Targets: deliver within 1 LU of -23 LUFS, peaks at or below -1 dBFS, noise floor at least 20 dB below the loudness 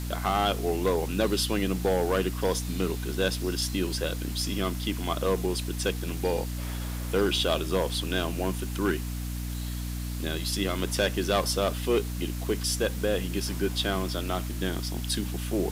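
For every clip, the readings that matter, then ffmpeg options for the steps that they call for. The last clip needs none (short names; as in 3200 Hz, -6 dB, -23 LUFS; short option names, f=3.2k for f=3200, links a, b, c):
hum 60 Hz; harmonics up to 300 Hz; hum level -31 dBFS; noise floor -33 dBFS; noise floor target -49 dBFS; loudness -28.5 LUFS; peak -11.5 dBFS; loudness target -23.0 LUFS
-> -af "bandreject=f=60:t=h:w=6,bandreject=f=120:t=h:w=6,bandreject=f=180:t=h:w=6,bandreject=f=240:t=h:w=6,bandreject=f=300:t=h:w=6"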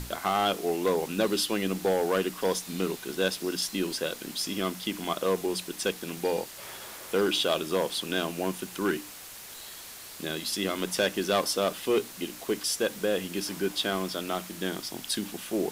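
hum none; noise floor -44 dBFS; noise floor target -50 dBFS
-> -af "afftdn=nr=6:nf=-44"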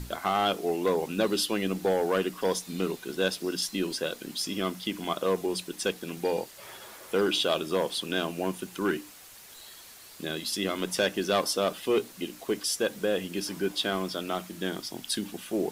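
noise floor -49 dBFS; noise floor target -50 dBFS
-> -af "afftdn=nr=6:nf=-49"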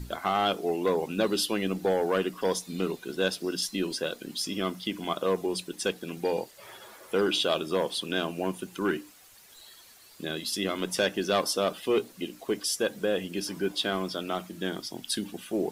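noise floor -54 dBFS; loudness -29.5 LUFS; peak -12.5 dBFS; loudness target -23.0 LUFS
-> -af "volume=6.5dB"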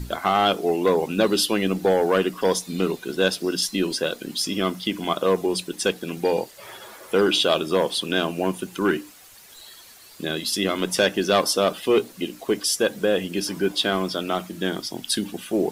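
loudness -23.0 LUFS; peak -6.0 dBFS; noise floor -47 dBFS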